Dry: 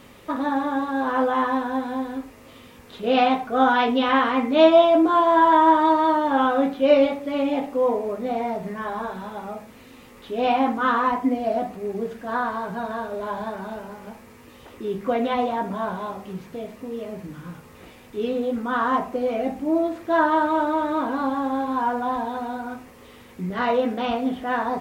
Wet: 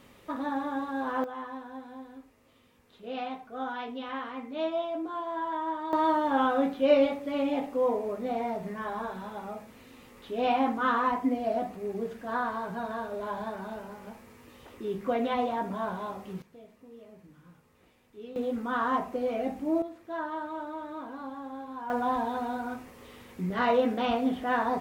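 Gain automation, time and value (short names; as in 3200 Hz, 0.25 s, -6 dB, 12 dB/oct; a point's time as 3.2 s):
-8 dB
from 1.24 s -17 dB
from 5.93 s -5.5 dB
from 16.42 s -18 dB
from 18.36 s -6 dB
from 19.82 s -15.5 dB
from 21.9 s -3 dB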